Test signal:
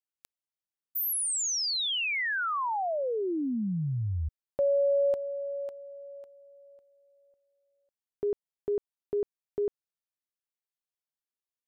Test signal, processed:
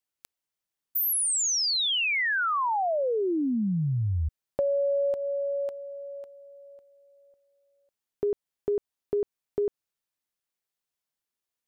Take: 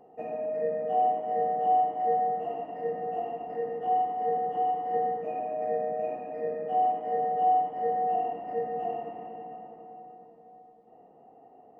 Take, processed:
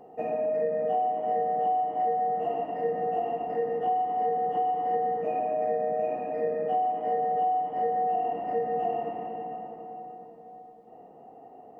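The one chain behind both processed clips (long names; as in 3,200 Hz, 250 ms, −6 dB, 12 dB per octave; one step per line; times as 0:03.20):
downward compressor 10 to 1, threshold −29 dBFS
level +5.5 dB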